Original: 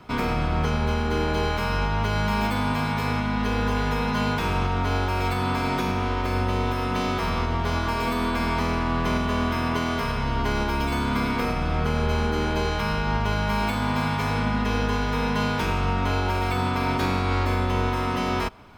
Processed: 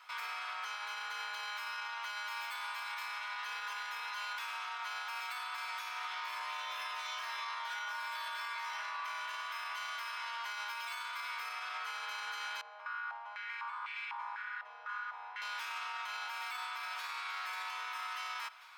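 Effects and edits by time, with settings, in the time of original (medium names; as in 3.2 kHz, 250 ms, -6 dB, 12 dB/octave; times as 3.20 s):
5.98–8.90 s: reverb throw, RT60 1.6 s, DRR -6.5 dB
12.61–15.42 s: step-sequenced band-pass 4 Hz 610–2400 Hz
16.29–17.23 s: echo throw 540 ms, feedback 35%, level -6.5 dB
whole clip: high-pass 1.1 kHz 24 dB/octave; peak limiter -29.5 dBFS; trim -3 dB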